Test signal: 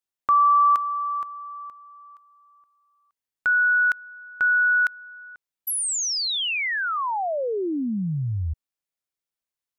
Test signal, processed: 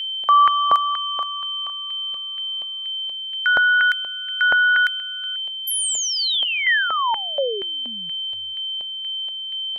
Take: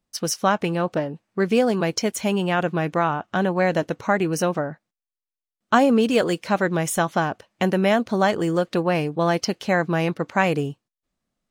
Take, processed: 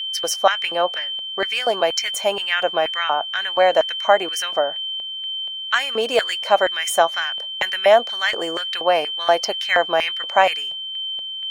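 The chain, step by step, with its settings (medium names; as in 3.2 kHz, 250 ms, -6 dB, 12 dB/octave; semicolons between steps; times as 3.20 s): whistle 3.1 kHz -29 dBFS; LFO high-pass square 2.1 Hz 640–1900 Hz; trim +1.5 dB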